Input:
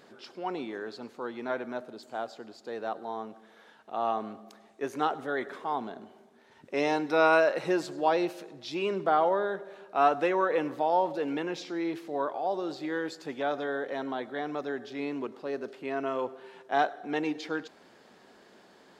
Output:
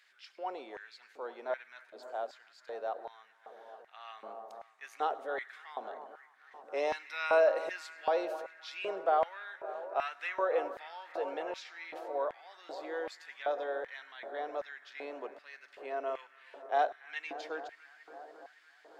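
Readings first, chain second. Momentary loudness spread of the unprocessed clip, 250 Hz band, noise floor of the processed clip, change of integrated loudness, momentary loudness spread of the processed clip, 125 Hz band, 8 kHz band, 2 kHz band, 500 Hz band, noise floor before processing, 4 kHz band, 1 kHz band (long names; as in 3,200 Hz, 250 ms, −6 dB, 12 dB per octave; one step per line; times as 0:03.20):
14 LU, −18.0 dB, −64 dBFS, −5.5 dB, 20 LU, below −25 dB, can't be measured, −5.5 dB, −5.0 dB, −58 dBFS, −6.0 dB, −6.5 dB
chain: bucket-brigade delay 280 ms, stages 4,096, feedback 81%, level −14.5 dB
auto-filter high-pass square 1.3 Hz 560–2,000 Hz
level −8 dB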